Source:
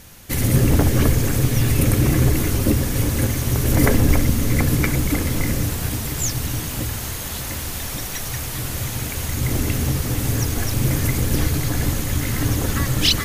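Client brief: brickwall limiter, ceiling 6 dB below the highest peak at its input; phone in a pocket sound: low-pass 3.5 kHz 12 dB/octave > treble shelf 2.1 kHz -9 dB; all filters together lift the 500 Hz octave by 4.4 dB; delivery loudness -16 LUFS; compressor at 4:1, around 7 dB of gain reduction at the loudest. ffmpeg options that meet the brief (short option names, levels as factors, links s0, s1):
-af "equalizer=f=500:t=o:g=6,acompressor=threshold=0.126:ratio=4,alimiter=limit=0.2:level=0:latency=1,lowpass=3500,highshelf=f=2100:g=-9,volume=3.35"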